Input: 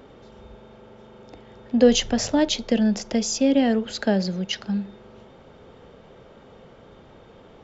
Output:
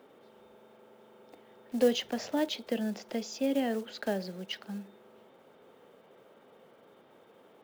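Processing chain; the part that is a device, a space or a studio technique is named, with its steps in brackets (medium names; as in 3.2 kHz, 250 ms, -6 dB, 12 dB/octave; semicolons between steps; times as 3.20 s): early digital voice recorder (band-pass 260–4000 Hz; block-companded coder 5-bit); trim -8.5 dB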